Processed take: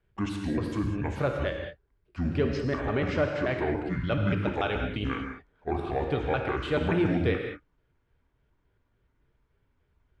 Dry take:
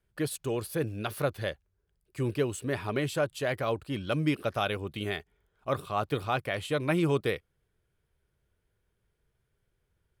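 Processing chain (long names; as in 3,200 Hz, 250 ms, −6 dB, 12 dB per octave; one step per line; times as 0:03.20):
pitch shifter gated in a rhythm −7.5 semitones, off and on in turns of 144 ms
low-pass filter 3,100 Hz 12 dB per octave
in parallel at +1 dB: brickwall limiter −27.5 dBFS, peak gain reduction 11 dB
on the sum: reverb whose tail is shaped and stops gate 230 ms flat, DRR 2.5 dB
level −2.5 dB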